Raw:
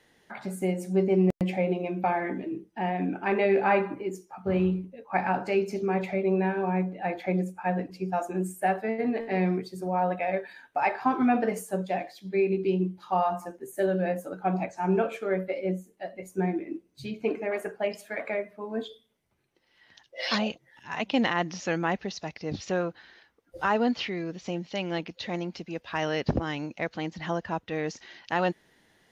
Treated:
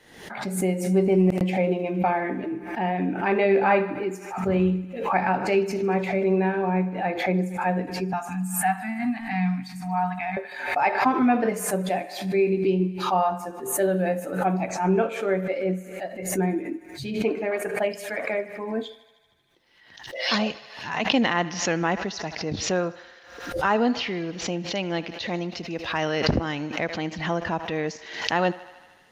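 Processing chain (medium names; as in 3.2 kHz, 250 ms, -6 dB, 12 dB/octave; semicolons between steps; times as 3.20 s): 8.13–10.37 s: Chebyshev band-stop 270–730 Hz, order 4; thinning echo 77 ms, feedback 77%, high-pass 400 Hz, level -18 dB; swell ahead of each attack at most 71 dB/s; trim +3 dB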